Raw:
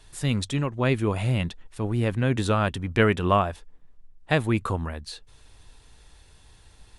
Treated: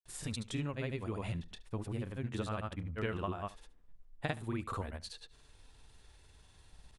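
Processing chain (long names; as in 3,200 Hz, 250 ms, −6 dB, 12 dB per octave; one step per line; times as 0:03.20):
downward compressor 10 to 1, threshold −26 dBFS, peak gain reduction 12 dB
granular cloud, pitch spread up and down by 0 semitones
on a send: single-tap delay 72 ms −19.5 dB
on the sum: level −6 dB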